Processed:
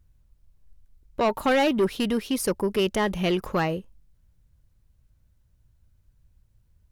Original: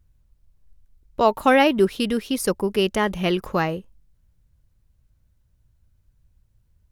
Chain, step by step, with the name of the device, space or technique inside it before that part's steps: saturation between pre-emphasis and de-emphasis (treble shelf 8 kHz +9.5 dB; saturation -16.5 dBFS, distortion -10 dB; treble shelf 8 kHz -9.5 dB)

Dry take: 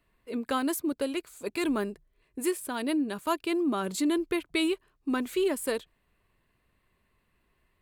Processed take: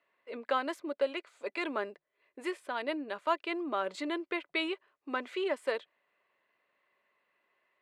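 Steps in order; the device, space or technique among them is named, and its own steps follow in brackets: tin-can telephone (band-pass 550–3100 Hz; small resonant body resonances 570/2000 Hz, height 7 dB, ringing for 40 ms)

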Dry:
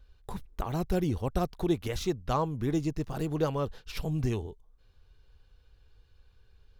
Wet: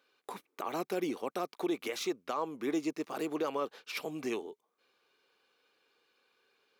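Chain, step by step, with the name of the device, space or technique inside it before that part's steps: laptop speaker (high-pass 280 Hz 24 dB/octave; peaking EQ 1.2 kHz +5.5 dB 0.23 oct; peaking EQ 2.3 kHz +7.5 dB 0.3 oct; peak limiter -24 dBFS, peak gain reduction 10.5 dB)

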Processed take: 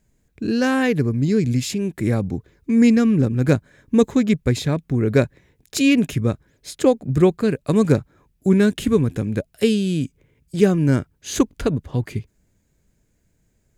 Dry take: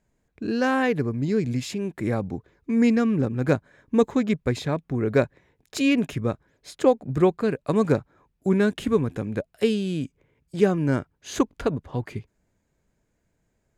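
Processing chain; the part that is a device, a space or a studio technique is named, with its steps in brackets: smiley-face EQ (bass shelf 180 Hz +4.5 dB; peaking EQ 890 Hz -6 dB 1.6 oct; treble shelf 6.2 kHz +7.5 dB); trim +4.5 dB

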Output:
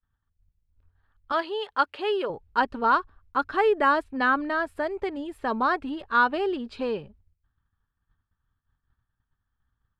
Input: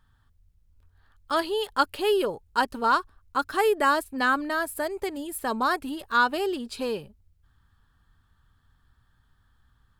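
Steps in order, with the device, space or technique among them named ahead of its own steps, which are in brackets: 1.32–2.30 s: high-pass 540 Hz 6 dB/octave; hearing-loss simulation (low-pass 2.8 kHz 12 dB/octave; expander -52 dBFS); trim +1 dB

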